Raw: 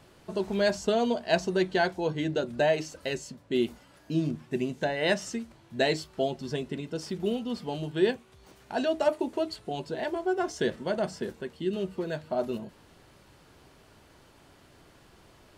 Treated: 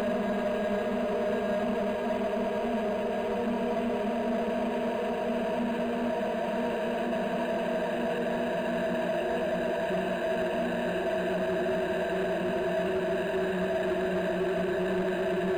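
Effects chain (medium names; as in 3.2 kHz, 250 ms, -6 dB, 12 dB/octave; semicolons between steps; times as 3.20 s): Paulstretch 24×, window 1.00 s, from 0.86 s; rippled EQ curve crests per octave 1.3, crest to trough 8 dB; saturation -23.5 dBFS, distortion -13 dB; upward compressor, threshold -38 dBFS; decimation joined by straight lines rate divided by 8×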